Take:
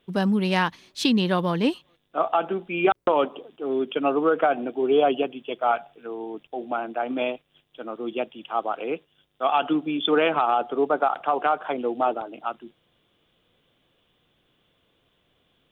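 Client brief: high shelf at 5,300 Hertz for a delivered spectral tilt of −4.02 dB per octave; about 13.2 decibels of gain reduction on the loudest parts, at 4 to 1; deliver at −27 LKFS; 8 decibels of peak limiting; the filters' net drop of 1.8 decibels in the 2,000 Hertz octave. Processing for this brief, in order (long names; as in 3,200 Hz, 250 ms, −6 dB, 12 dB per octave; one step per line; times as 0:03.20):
parametric band 2,000 Hz −4 dB
high-shelf EQ 5,300 Hz +8.5 dB
downward compressor 4 to 1, threshold −32 dBFS
level +10 dB
brickwall limiter −16 dBFS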